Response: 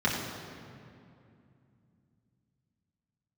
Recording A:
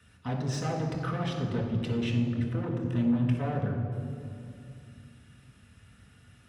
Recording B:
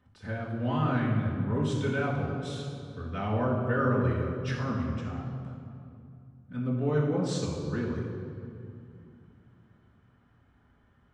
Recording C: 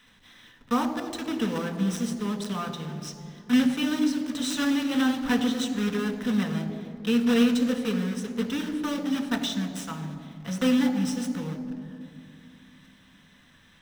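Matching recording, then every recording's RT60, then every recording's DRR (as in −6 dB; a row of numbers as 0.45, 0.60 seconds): B; 2.5, 2.5, 2.6 seconds; −2.0, −6.5, 5.0 decibels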